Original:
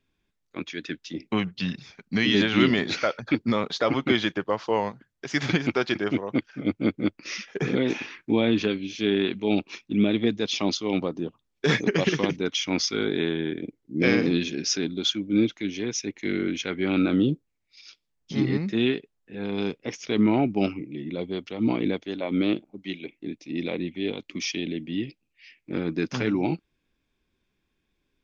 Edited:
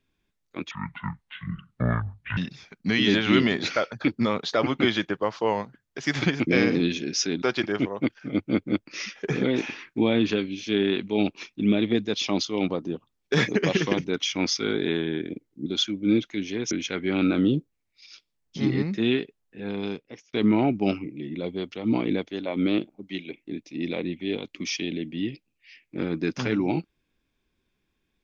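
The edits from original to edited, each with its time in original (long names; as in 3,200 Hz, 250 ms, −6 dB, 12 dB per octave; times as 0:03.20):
0:00.71–0:01.64: play speed 56%
0:13.98–0:14.93: move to 0:05.74
0:15.98–0:16.46: remove
0:19.43–0:20.08: fade out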